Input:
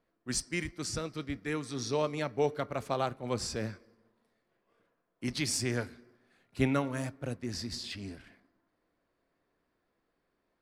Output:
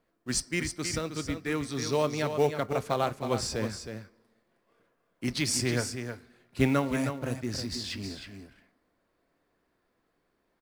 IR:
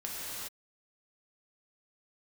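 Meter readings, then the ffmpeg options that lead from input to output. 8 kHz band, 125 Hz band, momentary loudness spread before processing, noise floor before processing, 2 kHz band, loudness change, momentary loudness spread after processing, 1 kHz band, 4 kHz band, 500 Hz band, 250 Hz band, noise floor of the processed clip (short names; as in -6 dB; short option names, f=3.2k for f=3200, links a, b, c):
+4.0 dB, +4.0 dB, 10 LU, -80 dBFS, +4.0 dB, +4.0 dB, 13 LU, +4.0 dB, +4.0 dB, +4.0 dB, +4.0 dB, -75 dBFS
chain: -filter_complex "[0:a]asplit=2[a][b];[b]acrusher=bits=3:mode=log:mix=0:aa=0.000001,volume=-6.5dB[c];[a][c]amix=inputs=2:normalize=0,aecho=1:1:315:0.398"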